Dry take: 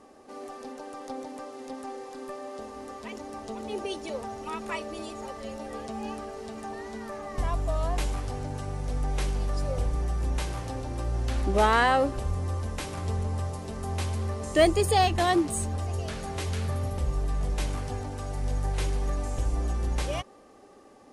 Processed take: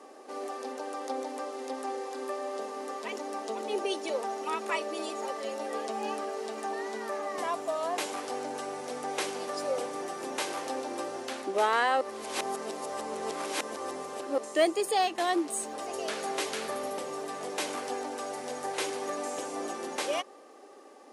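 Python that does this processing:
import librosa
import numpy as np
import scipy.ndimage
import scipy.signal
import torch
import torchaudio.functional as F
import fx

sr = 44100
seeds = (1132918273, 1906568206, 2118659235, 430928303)

y = fx.edit(x, sr, fx.reverse_span(start_s=12.01, length_s=2.37), tone=tone)
y = scipy.signal.sosfilt(scipy.signal.butter(4, 300.0, 'highpass', fs=sr, output='sos'), y)
y = fx.rider(y, sr, range_db=4, speed_s=0.5)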